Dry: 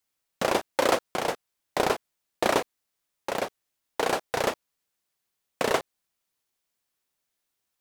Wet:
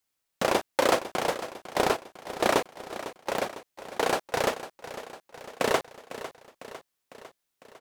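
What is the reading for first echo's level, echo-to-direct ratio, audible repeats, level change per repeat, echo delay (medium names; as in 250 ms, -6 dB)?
-13.5 dB, -11.5 dB, 4, -4.5 dB, 502 ms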